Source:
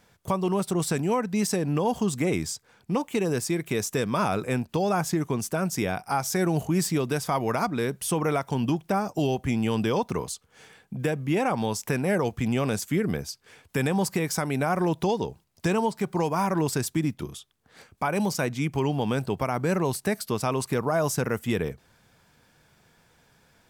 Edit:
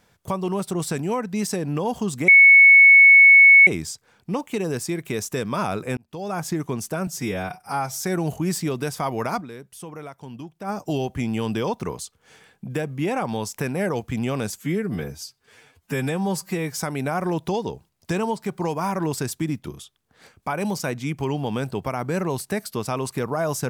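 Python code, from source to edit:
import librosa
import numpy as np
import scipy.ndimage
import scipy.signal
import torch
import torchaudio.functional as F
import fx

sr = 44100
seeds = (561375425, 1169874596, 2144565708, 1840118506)

y = fx.edit(x, sr, fx.insert_tone(at_s=2.28, length_s=1.39, hz=2210.0, db=-7.0),
    fx.fade_in_span(start_s=4.58, length_s=0.53),
    fx.stretch_span(start_s=5.68, length_s=0.64, factor=1.5),
    fx.fade_down_up(start_s=7.69, length_s=1.3, db=-12.0, fade_s=0.33, curve='exp'),
    fx.stretch_span(start_s=12.85, length_s=1.48, factor=1.5), tone=tone)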